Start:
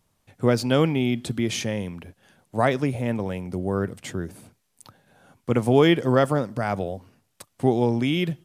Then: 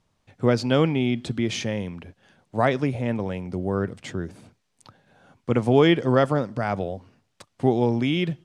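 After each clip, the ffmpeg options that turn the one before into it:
-af "lowpass=6100"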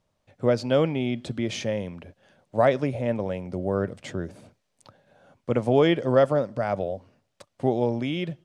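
-af "equalizer=f=580:t=o:w=0.45:g=9,dynaudnorm=f=200:g=11:m=1.58,volume=0.562"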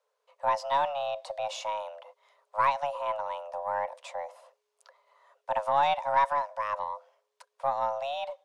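-af "afreqshift=420,aeval=exprs='0.447*(cos(1*acos(clip(val(0)/0.447,-1,1)))-cos(1*PI/2))+0.0178*(cos(4*acos(clip(val(0)/0.447,-1,1)))-cos(4*PI/2))':c=same,volume=0.531"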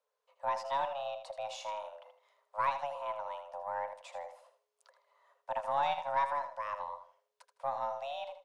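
-af "aecho=1:1:79|158|237:0.316|0.0822|0.0214,volume=0.447"

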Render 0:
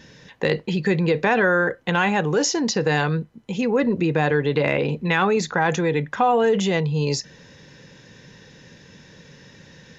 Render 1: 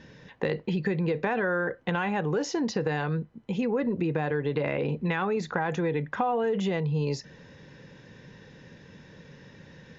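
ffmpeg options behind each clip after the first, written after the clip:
-af "aemphasis=mode=reproduction:type=75fm,acompressor=threshold=0.0794:ratio=4,volume=0.75"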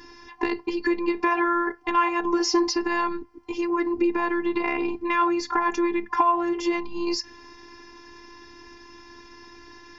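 -af "afftfilt=real='hypot(re,im)*cos(PI*b)':imag='0':win_size=512:overlap=0.75,superequalizer=8b=0.355:9b=2.82:13b=0.631:14b=2.24,volume=2.66"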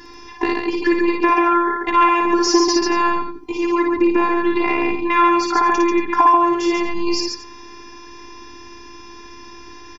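-af "aecho=1:1:56|139|231:0.668|0.631|0.158,volume=1.78"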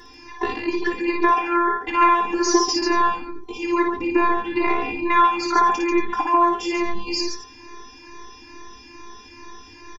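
-filter_complex "[0:a]asplit=2[s0][s1];[s1]adelay=22,volume=0.299[s2];[s0][s2]amix=inputs=2:normalize=0,asplit=2[s3][s4];[s4]adelay=2.3,afreqshift=2.3[s5];[s3][s5]amix=inputs=2:normalize=1"

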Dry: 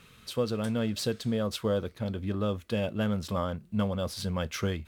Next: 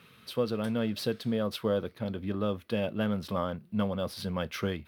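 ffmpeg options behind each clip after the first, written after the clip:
-af "highpass=120,equalizer=f=7200:t=o:w=0.62:g=-12.5"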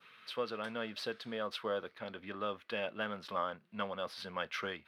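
-af "bandpass=f=1800:t=q:w=0.96:csg=0,adynamicequalizer=threshold=0.002:dfrequency=2200:dqfactor=1.2:tfrequency=2200:tqfactor=1.2:attack=5:release=100:ratio=0.375:range=2.5:mode=cutabove:tftype=bell,volume=1.41"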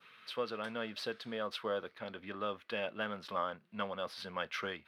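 -af anull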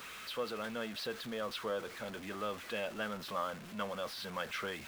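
-af "aeval=exprs='val(0)+0.5*0.00891*sgn(val(0))':c=same,volume=0.75"

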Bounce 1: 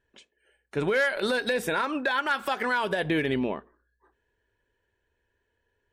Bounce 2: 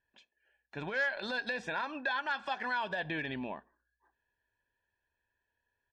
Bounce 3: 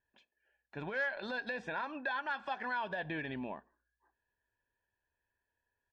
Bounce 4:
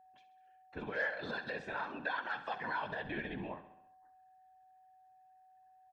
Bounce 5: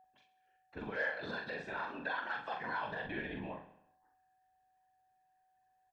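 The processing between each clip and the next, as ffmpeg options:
-af "lowpass=f=5800:w=0.5412,lowpass=f=5800:w=1.3066,lowshelf=f=170:g=-9,aecho=1:1:1.2:0.58,volume=0.376"
-af "highshelf=f=3700:g=-11,volume=0.841"
-filter_complex "[0:a]afftfilt=real='hypot(re,im)*cos(2*PI*random(0))':imag='hypot(re,im)*sin(2*PI*random(1))':win_size=512:overlap=0.75,aeval=exprs='val(0)+0.000562*sin(2*PI*750*n/s)':c=same,asplit=2[s0][s1];[s1]aecho=0:1:67|134|201|268|335|402:0.224|0.13|0.0753|0.0437|0.0253|0.0147[s2];[s0][s2]amix=inputs=2:normalize=0,volume=1.68"
-filter_complex "[0:a]asplit=2[s0][s1];[s1]adelay=42,volume=0.631[s2];[s0][s2]amix=inputs=2:normalize=0,volume=0.794"

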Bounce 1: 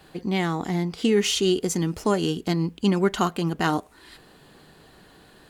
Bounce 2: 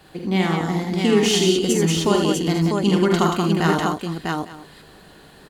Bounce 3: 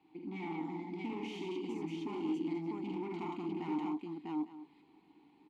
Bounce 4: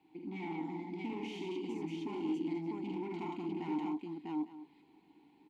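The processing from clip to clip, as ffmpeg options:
-af "aecho=1:1:48|79|183|648|854:0.501|0.562|0.562|0.668|0.119,volume=1.19"
-filter_complex "[0:a]volume=8.91,asoftclip=hard,volume=0.112,asplit=3[s0][s1][s2];[s0]bandpass=f=300:t=q:w=8,volume=1[s3];[s1]bandpass=f=870:t=q:w=8,volume=0.501[s4];[s2]bandpass=f=2240:t=q:w=8,volume=0.355[s5];[s3][s4][s5]amix=inputs=3:normalize=0,volume=0.562"
-af "bandreject=f=1200:w=5.4"

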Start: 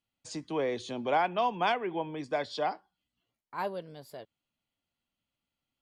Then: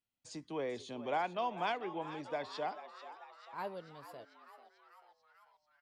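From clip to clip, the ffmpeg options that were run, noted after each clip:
-filter_complex "[0:a]asplit=8[s0][s1][s2][s3][s4][s5][s6][s7];[s1]adelay=441,afreqshift=110,volume=0.211[s8];[s2]adelay=882,afreqshift=220,volume=0.133[s9];[s3]adelay=1323,afreqshift=330,volume=0.0841[s10];[s4]adelay=1764,afreqshift=440,volume=0.0531[s11];[s5]adelay=2205,afreqshift=550,volume=0.0331[s12];[s6]adelay=2646,afreqshift=660,volume=0.0209[s13];[s7]adelay=3087,afreqshift=770,volume=0.0132[s14];[s0][s8][s9][s10][s11][s12][s13][s14]amix=inputs=8:normalize=0,volume=0.422"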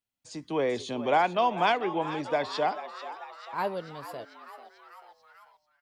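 -af "dynaudnorm=f=110:g=7:m=3.55"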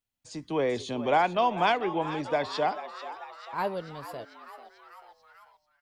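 -af "lowshelf=f=73:g=11.5"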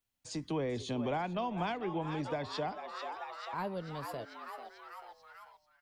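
-filter_complex "[0:a]acrossover=split=220[s0][s1];[s1]acompressor=threshold=0.01:ratio=3[s2];[s0][s2]amix=inputs=2:normalize=0,volume=1.19"

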